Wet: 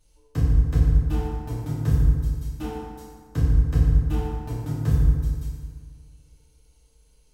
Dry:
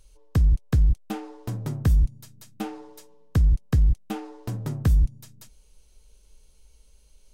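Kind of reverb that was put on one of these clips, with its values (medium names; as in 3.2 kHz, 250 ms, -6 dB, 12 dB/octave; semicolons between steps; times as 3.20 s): FDN reverb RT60 1.8 s, low-frequency decay 1.1×, high-frequency decay 0.55×, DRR -10 dB; trim -10.5 dB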